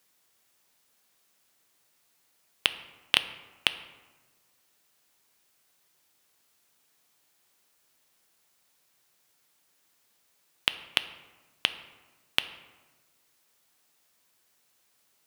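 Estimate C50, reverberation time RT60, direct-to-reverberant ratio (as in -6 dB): 13.5 dB, 1.3 s, 11.0 dB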